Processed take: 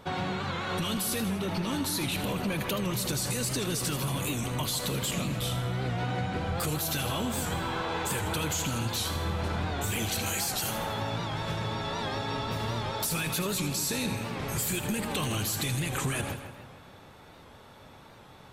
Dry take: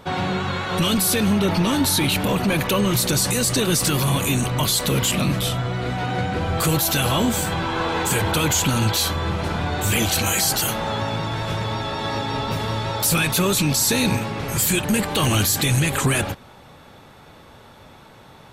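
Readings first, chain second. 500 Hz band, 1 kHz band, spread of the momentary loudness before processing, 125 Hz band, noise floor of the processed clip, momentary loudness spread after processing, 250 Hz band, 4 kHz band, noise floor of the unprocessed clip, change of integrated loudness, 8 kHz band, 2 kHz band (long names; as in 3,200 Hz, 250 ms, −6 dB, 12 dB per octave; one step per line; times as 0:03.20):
−9.5 dB, −9.0 dB, 7 LU, −9.5 dB, −51 dBFS, 3 LU, −10.5 dB, −10.0 dB, −46 dBFS, −10.0 dB, −10.5 dB, −9.5 dB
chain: downward compressor, threshold −22 dBFS, peak gain reduction 7 dB
echo with a time of its own for lows and highs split 2,700 Hz, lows 147 ms, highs 80 ms, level −9.5 dB
wow of a warped record 78 rpm, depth 100 cents
level −6 dB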